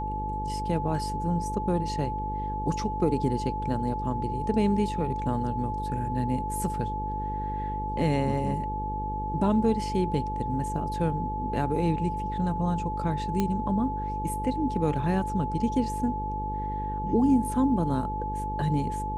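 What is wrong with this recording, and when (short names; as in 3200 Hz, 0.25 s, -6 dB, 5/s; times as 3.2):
buzz 50 Hz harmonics 10 -34 dBFS
tone 860 Hz -31 dBFS
13.4 pop -13 dBFS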